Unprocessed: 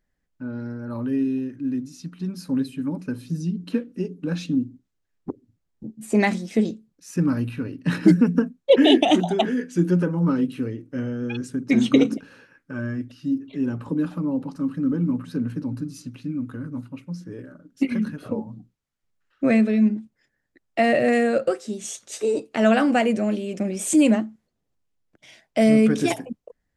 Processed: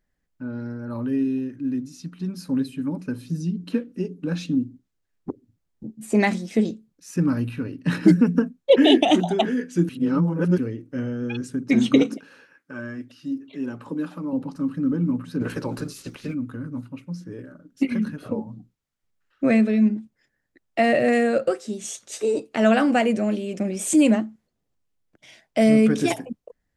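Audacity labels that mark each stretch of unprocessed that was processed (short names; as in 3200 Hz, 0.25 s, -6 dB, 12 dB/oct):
9.890000	10.580000	reverse
12.020000	14.330000	HPF 370 Hz 6 dB/oct
15.400000	16.330000	spectral limiter ceiling under each frame's peak by 22 dB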